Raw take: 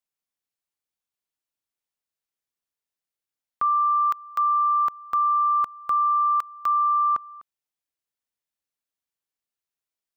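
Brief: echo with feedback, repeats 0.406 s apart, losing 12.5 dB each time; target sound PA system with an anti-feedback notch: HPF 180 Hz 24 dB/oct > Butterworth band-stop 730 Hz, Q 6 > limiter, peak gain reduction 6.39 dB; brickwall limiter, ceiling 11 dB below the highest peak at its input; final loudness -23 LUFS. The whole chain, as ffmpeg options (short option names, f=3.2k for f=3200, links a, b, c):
-af "alimiter=level_in=4.5dB:limit=-24dB:level=0:latency=1,volume=-4.5dB,highpass=f=180:w=0.5412,highpass=f=180:w=1.3066,asuperstop=centerf=730:order=8:qfactor=6,aecho=1:1:406|812|1218:0.237|0.0569|0.0137,volume=13dB,alimiter=limit=-19.5dB:level=0:latency=1"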